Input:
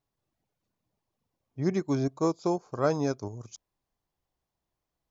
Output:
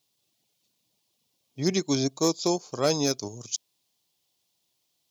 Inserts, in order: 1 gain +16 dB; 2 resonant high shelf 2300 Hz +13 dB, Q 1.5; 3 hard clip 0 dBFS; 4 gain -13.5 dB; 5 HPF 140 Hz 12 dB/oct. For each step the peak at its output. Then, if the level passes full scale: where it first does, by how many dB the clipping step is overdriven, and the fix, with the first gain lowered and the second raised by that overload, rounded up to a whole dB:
+5.0, +5.5, 0.0, -13.5, -11.0 dBFS; step 1, 5.5 dB; step 1 +10 dB, step 4 -7.5 dB

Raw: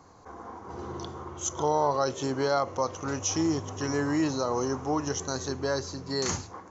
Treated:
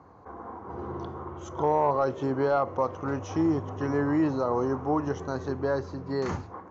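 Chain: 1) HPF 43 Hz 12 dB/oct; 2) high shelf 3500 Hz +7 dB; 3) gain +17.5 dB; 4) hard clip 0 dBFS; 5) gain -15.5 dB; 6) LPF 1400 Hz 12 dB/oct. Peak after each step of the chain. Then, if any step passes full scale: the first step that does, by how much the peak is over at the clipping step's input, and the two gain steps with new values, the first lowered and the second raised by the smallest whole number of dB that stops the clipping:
-13.5, -11.5, +6.0, 0.0, -15.5, -15.0 dBFS; step 3, 6.0 dB; step 3 +11.5 dB, step 5 -9.5 dB

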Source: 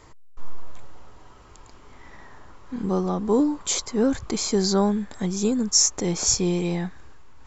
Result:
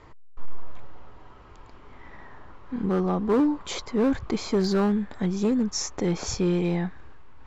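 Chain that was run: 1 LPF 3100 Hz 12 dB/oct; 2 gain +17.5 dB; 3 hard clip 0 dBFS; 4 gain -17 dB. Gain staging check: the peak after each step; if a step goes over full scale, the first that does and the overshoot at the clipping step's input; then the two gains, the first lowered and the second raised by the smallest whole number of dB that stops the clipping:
-9.0, +8.5, 0.0, -17.0 dBFS; step 2, 8.5 dB; step 2 +8.5 dB, step 4 -8 dB

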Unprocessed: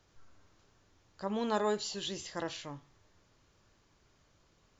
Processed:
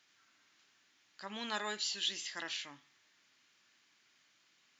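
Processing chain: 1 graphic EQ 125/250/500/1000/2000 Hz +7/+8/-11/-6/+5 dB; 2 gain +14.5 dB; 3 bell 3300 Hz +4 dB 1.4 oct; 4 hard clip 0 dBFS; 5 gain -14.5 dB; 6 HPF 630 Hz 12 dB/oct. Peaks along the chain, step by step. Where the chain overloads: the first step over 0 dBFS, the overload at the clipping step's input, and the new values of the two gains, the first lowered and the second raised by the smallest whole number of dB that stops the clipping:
-18.5, -4.0, -3.5, -3.5, -18.0, -21.5 dBFS; no overload

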